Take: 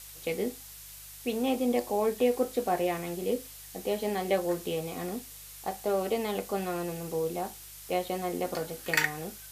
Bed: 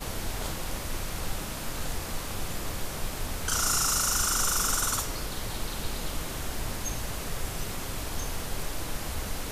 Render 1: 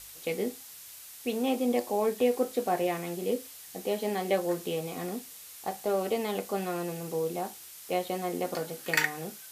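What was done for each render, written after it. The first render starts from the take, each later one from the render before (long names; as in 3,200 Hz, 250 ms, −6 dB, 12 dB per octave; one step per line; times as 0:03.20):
hum removal 50 Hz, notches 3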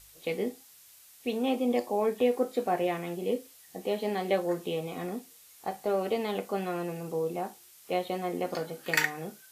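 noise reduction from a noise print 8 dB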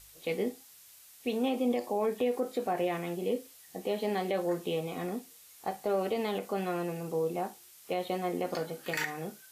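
brickwall limiter −21 dBFS, peak gain reduction 10.5 dB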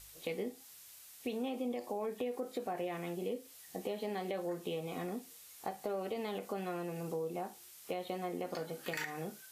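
downward compressor 3 to 1, threshold −37 dBFS, peak gain reduction 9.5 dB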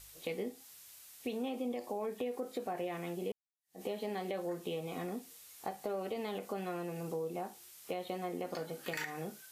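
0:03.32–0:03.82: fade in exponential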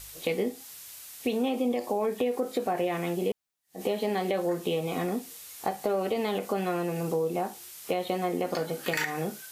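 level +10 dB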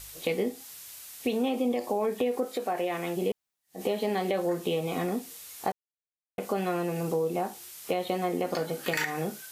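0:02.44–0:03.15: high-pass filter 500 Hz → 230 Hz 6 dB per octave
0:05.72–0:06.38: silence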